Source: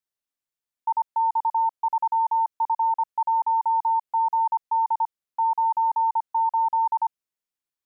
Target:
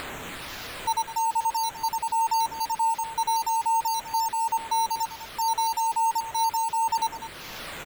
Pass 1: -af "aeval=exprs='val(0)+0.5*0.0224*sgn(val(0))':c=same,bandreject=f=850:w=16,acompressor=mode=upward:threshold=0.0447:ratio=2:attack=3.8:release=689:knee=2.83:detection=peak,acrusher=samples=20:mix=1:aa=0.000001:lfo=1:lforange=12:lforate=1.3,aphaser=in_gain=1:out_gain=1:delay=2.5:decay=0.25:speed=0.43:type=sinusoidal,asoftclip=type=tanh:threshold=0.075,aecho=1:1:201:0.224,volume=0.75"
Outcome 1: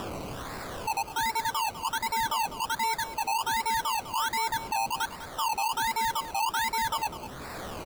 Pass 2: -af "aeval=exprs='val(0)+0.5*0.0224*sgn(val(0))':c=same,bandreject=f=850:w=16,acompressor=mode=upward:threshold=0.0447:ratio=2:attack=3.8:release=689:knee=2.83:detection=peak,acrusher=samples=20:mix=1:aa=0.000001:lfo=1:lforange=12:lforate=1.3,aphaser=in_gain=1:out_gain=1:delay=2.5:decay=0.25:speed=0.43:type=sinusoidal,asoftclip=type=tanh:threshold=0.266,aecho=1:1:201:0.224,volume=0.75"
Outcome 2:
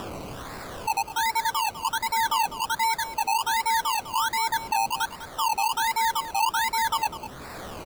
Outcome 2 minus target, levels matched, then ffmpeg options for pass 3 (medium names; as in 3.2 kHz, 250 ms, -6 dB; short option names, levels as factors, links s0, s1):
decimation with a swept rate: distortion +16 dB
-af "aeval=exprs='val(0)+0.5*0.0224*sgn(val(0))':c=same,bandreject=f=850:w=16,acompressor=mode=upward:threshold=0.0447:ratio=2:attack=3.8:release=689:knee=2.83:detection=peak,acrusher=samples=7:mix=1:aa=0.000001:lfo=1:lforange=4.2:lforate=1.3,aphaser=in_gain=1:out_gain=1:delay=2.5:decay=0.25:speed=0.43:type=sinusoidal,asoftclip=type=tanh:threshold=0.266,aecho=1:1:201:0.224,volume=0.75"